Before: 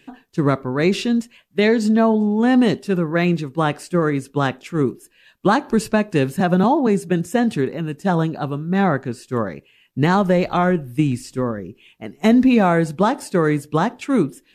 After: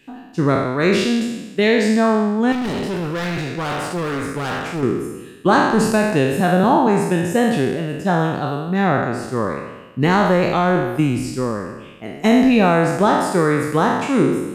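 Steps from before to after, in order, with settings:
peak hold with a decay on every bin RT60 1.15 s
0:02.52–0:04.83: hard clipping −19.5 dBFS, distortion −13 dB
level −1 dB

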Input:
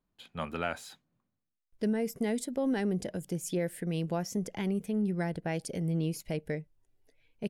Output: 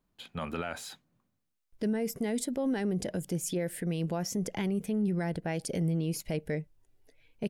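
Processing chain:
brickwall limiter −27.5 dBFS, peak gain reduction 10 dB
level +4.5 dB

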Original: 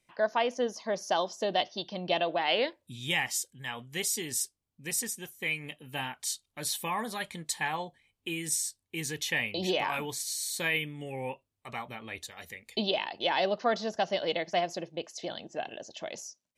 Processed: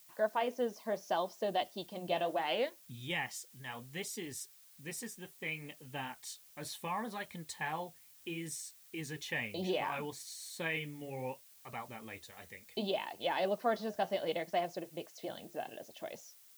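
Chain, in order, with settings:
parametric band 13,000 Hz −10 dB 2.8 octaves
background noise blue −56 dBFS
flanger 0.68 Hz, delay 1.2 ms, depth 9.8 ms, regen −62%

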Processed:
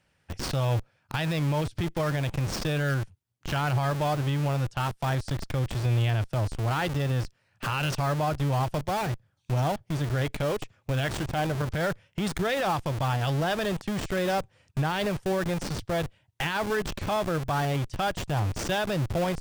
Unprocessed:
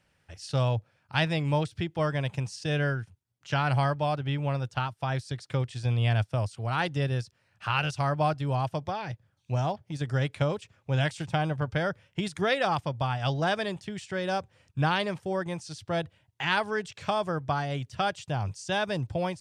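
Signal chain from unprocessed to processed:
0:10.08–0:11.62: dynamic equaliser 170 Hz, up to −7 dB, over −43 dBFS, Q 2.6
in parallel at −3 dB: comparator with hysteresis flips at −38.5 dBFS
on the sum: brickwall limiter −19.5 dBFS, peak gain reduction 9 dB

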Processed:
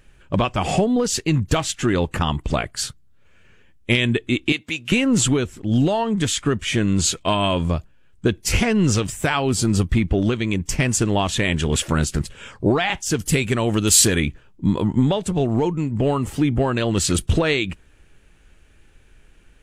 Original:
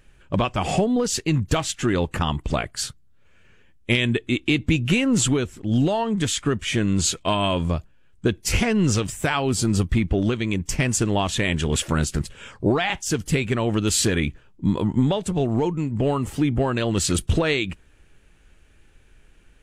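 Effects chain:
0:04.52–0:04.92: high-pass filter 1,300 Hz 6 dB per octave
0:13.19–0:14.22: high-shelf EQ 6,500 Hz +11.5 dB
level +2 dB

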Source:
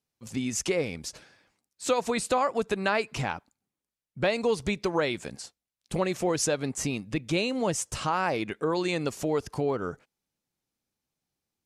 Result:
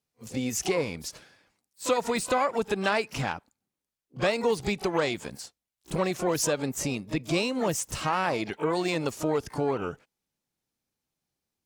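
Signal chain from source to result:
echo ahead of the sound 32 ms −17 dB
pitch-shifted copies added +12 semitones −12 dB

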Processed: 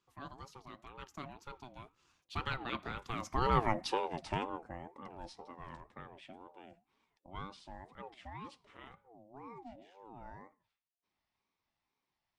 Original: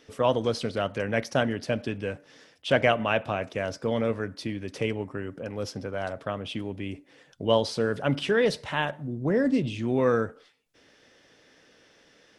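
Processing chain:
source passing by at 0:03.75, 45 m/s, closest 10 metres
ring modulator whose carrier an LFO sweeps 560 Hz, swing 25%, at 2 Hz
level +3.5 dB

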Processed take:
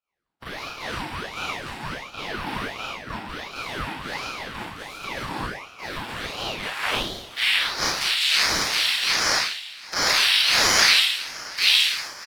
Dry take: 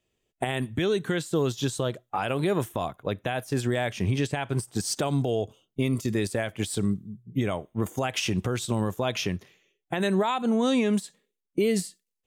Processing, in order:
compressing power law on the bin magnitudes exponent 0.21
high-pass filter 450 Hz 24 dB per octave
parametric band 830 Hz −7.5 dB 0.67 octaves
notch filter 4,600 Hz, Q 6.1
dynamic equaliser 1,700 Hz, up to +6 dB, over −42 dBFS, Q 0.86
in parallel at +1 dB: brickwall limiter −15.5 dBFS, peak gain reduction 9.5 dB
on the sum: formants moved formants +5 semitones
band-pass filter sweep 570 Hz → 3,400 Hz, 0:05.84–0:07.74
on a send: single-tap delay 571 ms −20 dB
on the sum: four-comb reverb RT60 0.93 s, combs from 28 ms, DRR −9.5 dB
ring modulator whose carrier an LFO sweeps 1,100 Hz, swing 75%, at 1.4 Hz

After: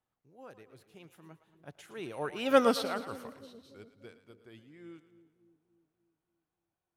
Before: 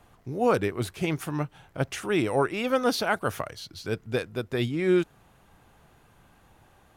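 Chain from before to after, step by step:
source passing by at 0:02.59, 24 m/s, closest 1.6 metres
low-shelf EQ 73 Hz −10 dB
echo with a time of its own for lows and highs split 450 Hz, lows 293 ms, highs 112 ms, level −13 dB
level +3 dB

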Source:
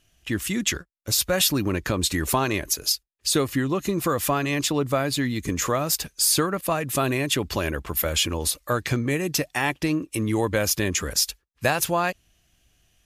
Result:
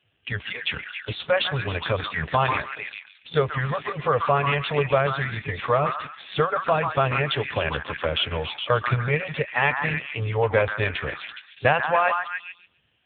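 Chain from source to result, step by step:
0:02.09–0:03.91: de-essing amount 45%
on a send: echo through a band-pass that steps 139 ms, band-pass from 1,200 Hz, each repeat 0.7 octaves, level −2 dB
on the sum: brick-wall band-stop 170–400 Hz
level +4.5 dB
AMR narrowband 5.9 kbit/s 8,000 Hz

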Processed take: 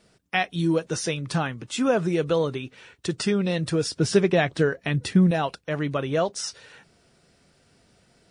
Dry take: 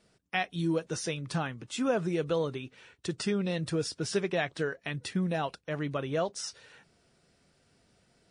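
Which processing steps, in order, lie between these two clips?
0:03.96–0:05.31: low-shelf EQ 440 Hz +7 dB
level +6.5 dB

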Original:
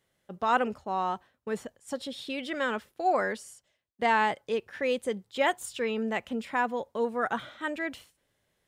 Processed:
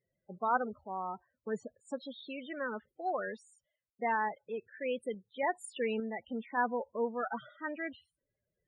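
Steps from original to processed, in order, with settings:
spectral peaks only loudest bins 16
sample-and-hold tremolo 3.5 Hz
level −2.5 dB

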